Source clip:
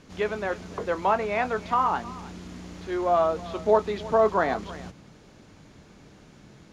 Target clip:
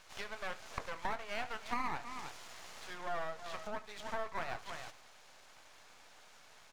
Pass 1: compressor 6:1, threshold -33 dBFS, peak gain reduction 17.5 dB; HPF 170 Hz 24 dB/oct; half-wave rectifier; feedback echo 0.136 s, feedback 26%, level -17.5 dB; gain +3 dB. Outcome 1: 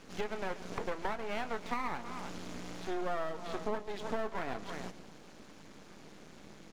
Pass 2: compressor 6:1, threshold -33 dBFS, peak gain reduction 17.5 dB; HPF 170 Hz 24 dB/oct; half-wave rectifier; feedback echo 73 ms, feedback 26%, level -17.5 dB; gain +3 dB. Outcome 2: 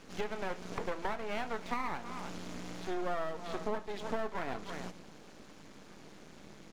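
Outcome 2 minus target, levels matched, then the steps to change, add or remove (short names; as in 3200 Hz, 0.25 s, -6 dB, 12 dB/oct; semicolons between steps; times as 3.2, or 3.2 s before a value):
125 Hz band +4.5 dB
change: HPF 670 Hz 24 dB/oct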